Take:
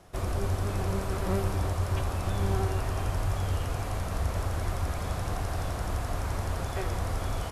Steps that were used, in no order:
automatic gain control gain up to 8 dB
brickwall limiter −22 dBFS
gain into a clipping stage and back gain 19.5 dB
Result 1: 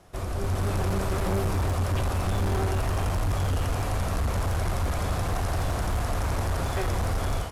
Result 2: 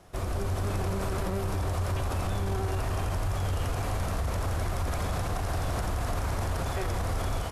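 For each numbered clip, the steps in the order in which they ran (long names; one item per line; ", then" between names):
automatic gain control, then gain into a clipping stage and back, then brickwall limiter
automatic gain control, then brickwall limiter, then gain into a clipping stage and back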